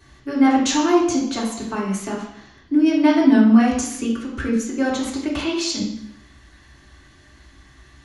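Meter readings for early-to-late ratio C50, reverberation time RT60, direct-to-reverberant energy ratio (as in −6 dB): 4.5 dB, 0.70 s, −4.0 dB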